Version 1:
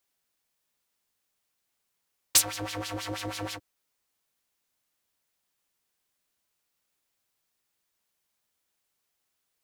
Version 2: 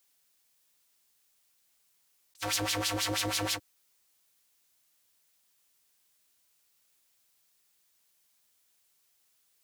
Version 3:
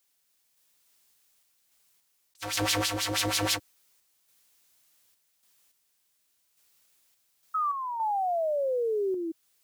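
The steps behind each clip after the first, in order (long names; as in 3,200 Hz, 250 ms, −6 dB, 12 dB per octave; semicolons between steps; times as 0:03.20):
high-shelf EQ 2,500 Hz +8.5 dB; compressor whose output falls as the input rises −28 dBFS, ratio −0.5; level −3.5 dB
sound drawn into the spectrogram fall, 0:07.54–0:09.32, 320–1,300 Hz −32 dBFS; sample-and-hold tremolo; level +5 dB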